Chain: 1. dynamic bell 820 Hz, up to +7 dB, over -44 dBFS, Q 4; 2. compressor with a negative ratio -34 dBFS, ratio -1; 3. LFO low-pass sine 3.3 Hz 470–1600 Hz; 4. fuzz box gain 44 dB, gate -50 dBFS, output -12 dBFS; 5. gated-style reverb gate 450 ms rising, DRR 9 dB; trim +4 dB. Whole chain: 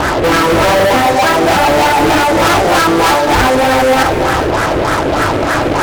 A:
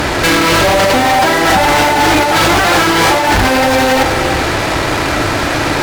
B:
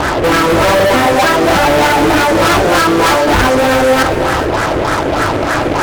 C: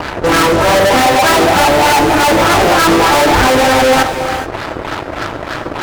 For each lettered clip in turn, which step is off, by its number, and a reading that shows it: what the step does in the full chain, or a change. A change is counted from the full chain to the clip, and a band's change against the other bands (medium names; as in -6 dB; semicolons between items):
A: 3, momentary loudness spread change +1 LU; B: 1, 1 kHz band -1.5 dB; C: 2, momentary loudness spread change +9 LU